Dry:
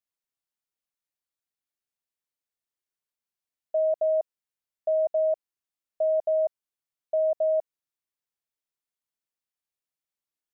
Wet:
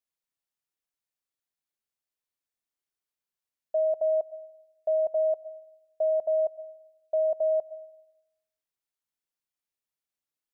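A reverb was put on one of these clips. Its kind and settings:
comb and all-pass reverb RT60 0.88 s, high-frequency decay 0.95×, pre-delay 65 ms, DRR 17.5 dB
level −1 dB

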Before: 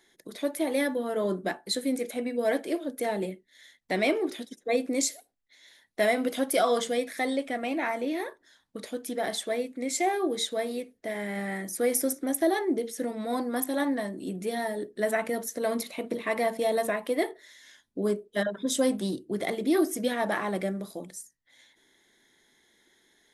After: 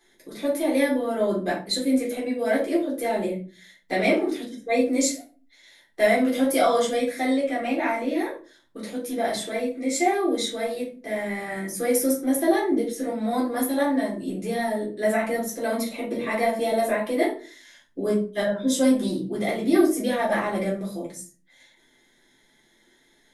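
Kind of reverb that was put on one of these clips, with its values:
rectangular room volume 200 cubic metres, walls furnished, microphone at 3.8 metres
level −4 dB

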